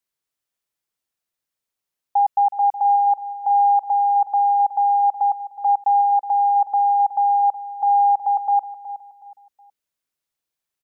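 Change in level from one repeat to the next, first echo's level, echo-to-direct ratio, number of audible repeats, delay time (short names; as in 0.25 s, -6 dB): -10.0 dB, -14.0 dB, -13.5 dB, 3, 0.369 s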